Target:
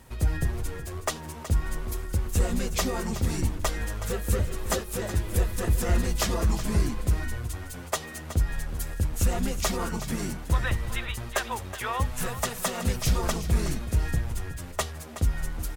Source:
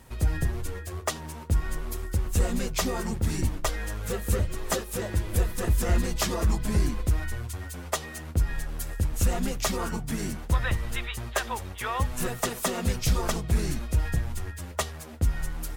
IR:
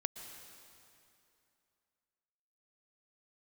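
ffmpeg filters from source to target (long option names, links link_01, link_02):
-filter_complex "[0:a]asettb=1/sr,asplit=3[link_01][link_02][link_03];[link_01]atrim=end=12.104[link_04];[link_02]atrim=start=12.1:end=12.85,asetpts=PTS-STARTPTS,afade=type=in:duration=0.004:curve=qsin,afade=type=out:start_time=0.746:duration=0.004:curve=qsin,equalizer=frequency=320:width_type=o:width=0.59:gain=-11.5[link_05];[link_03]atrim=start=12.846[link_06];[link_04][link_05]acrossfade=duration=0.004:curve1=hsin:curve2=qsin[link_07];[link_07][link_06]acrossfade=duration=0.004:curve1=qsin:curve2=hsin,aecho=1:1:371:0.251"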